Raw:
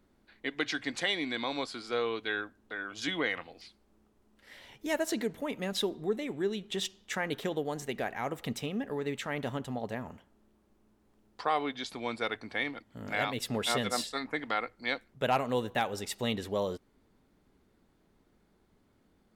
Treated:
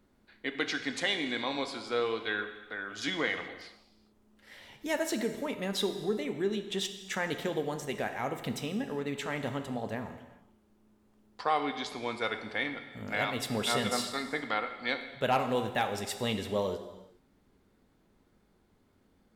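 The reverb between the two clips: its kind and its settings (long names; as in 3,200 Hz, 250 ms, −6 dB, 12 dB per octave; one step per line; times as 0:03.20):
reverb whose tail is shaped and stops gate 450 ms falling, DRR 7 dB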